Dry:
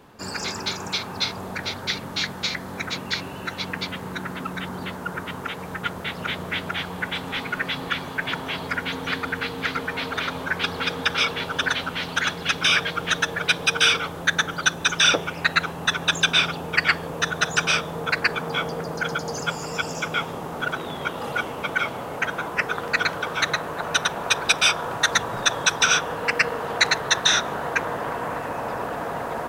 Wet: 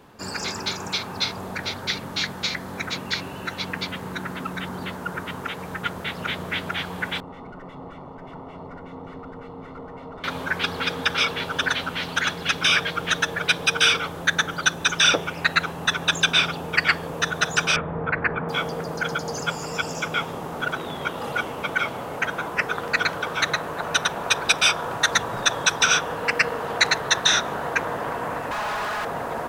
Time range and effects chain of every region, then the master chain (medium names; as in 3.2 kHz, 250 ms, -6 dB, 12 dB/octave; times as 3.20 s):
7.20–10.24 s: valve stage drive 31 dB, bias 0.8 + Savitzky-Golay filter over 65 samples
17.76–18.49 s: low-pass 2.1 kHz 24 dB/octave + bass shelf 140 Hz +9 dB
28.51–29.05 s: peaking EQ 360 Hz -11.5 dB 2.2 oct + comb 4.8 ms, depth 75% + overdrive pedal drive 28 dB, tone 2.9 kHz, clips at -21 dBFS
whole clip: none